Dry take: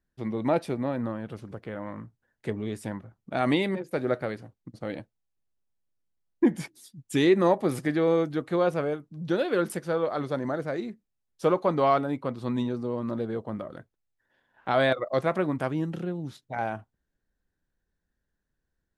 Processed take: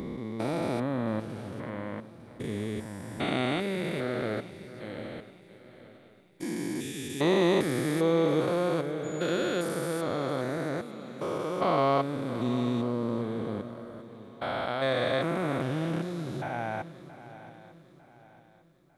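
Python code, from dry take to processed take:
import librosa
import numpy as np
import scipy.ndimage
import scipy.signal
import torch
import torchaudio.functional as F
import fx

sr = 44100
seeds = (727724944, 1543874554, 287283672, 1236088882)

y = fx.spec_steps(x, sr, hold_ms=400)
y = fx.high_shelf(y, sr, hz=2700.0, db=9.5)
y = fx.dmg_tone(y, sr, hz=6900.0, level_db=-50.0, at=(9.03, 9.64), fade=0.02)
y = fx.echo_swing(y, sr, ms=901, ratio=3, feedback_pct=37, wet_db=-15.5)
y = y * librosa.db_to_amplitude(1.5)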